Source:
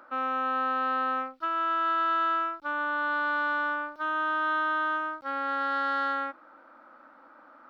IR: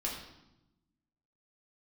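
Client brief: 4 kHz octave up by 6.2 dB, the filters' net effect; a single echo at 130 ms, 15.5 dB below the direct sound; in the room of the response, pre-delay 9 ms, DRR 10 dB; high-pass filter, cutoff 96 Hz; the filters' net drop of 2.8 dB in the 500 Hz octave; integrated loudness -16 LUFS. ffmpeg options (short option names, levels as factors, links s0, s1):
-filter_complex "[0:a]highpass=96,equalizer=f=500:t=o:g=-3.5,equalizer=f=4000:t=o:g=8.5,aecho=1:1:130:0.168,asplit=2[s0][s1];[1:a]atrim=start_sample=2205,adelay=9[s2];[s1][s2]afir=irnorm=-1:irlink=0,volume=0.224[s3];[s0][s3]amix=inputs=2:normalize=0,volume=3.35"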